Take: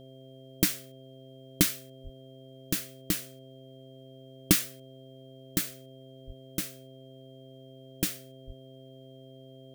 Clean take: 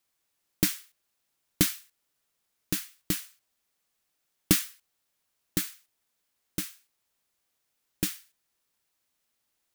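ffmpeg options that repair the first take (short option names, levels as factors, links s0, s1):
-filter_complex "[0:a]bandreject=f=131.8:t=h:w=4,bandreject=f=263.6:t=h:w=4,bandreject=f=395.4:t=h:w=4,bandreject=f=527.2:t=h:w=4,bandreject=f=659:t=h:w=4,bandreject=f=3200:w=30,asplit=3[s0][s1][s2];[s0]afade=t=out:st=2.03:d=0.02[s3];[s1]highpass=f=140:w=0.5412,highpass=f=140:w=1.3066,afade=t=in:st=2.03:d=0.02,afade=t=out:st=2.15:d=0.02[s4];[s2]afade=t=in:st=2.15:d=0.02[s5];[s3][s4][s5]amix=inputs=3:normalize=0,asplit=3[s6][s7][s8];[s6]afade=t=out:st=6.26:d=0.02[s9];[s7]highpass=f=140:w=0.5412,highpass=f=140:w=1.3066,afade=t=in:st=6.26:d=0.02,afade=t=out:st=6.38:d=0.02[s10];[s8]afade=t=in:st=6.38:d=0.02[s11];[s9][s10][s11]amix=inputs=3:normalize=0,asplit=3[s12][s13][s14];[s12]afade=t=out:st=8.46:d=0.02[s15];[s13]highpass=f=140:w=0.5412,highpass=f=140:w=1.3066,afade=t=in:st=8.46:d=0.02,afade=t=out:st=8.58:d=0.02[s16];[s14]afade=t=in:st=8.58:d=0.02[s17];[s15][s16][s17]amix=inputs=3:normalize=0"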